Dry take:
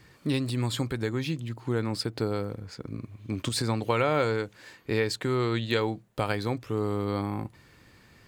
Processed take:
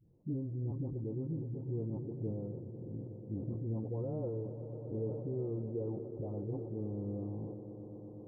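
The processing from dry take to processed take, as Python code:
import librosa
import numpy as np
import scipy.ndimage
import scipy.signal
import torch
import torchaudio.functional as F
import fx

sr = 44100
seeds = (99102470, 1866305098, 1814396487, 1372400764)

y = fx.spec_delay(x, sr, highs='late', ms=503)
y = scipy.ndimage.gaussian_filter1d(y, 16.0, mode='constant')
y = fx.echo_swell(y, sr, ms=122, loudest=5, wet_db=-15.5)
y = fx.sustainer(y, sr, db_per_s=43.0)
y = y * 10.0 ** (-7.0 / 20.0)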